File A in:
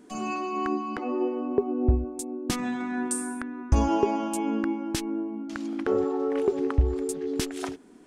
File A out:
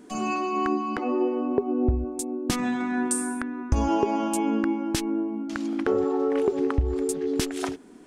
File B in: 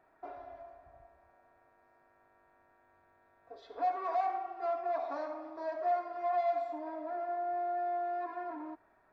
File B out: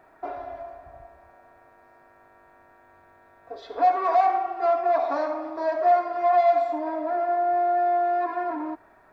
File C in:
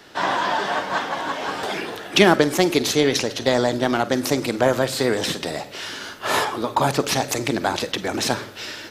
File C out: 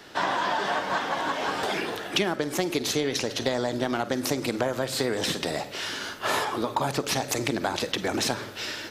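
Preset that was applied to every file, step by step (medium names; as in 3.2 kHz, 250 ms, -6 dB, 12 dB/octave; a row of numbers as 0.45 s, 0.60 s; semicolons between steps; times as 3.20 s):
compression 6:1, threshold -22 dBFS; peak normalisation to -9 dBFS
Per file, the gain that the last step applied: +3.5 dB, +12.0 dB, -0.5 dB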